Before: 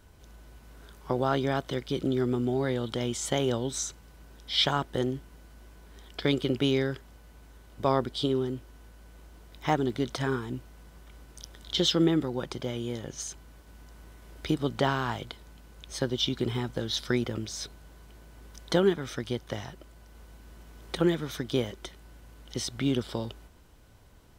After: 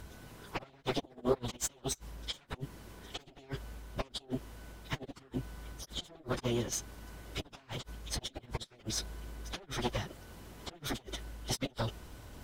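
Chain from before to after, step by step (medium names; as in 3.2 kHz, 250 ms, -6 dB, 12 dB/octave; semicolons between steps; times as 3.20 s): reverse; upward compressor, threshold -44 dBFS; reverse; Chebyshev shaper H 2 -11 dB, 4 -43 dB, 6 -7 dB, 8 -15 dB, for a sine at -11 dBFS; inverted gate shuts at -19 dBFS, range -34 dB; plain phase-vocoder stretch 0.51×; trim +6 dB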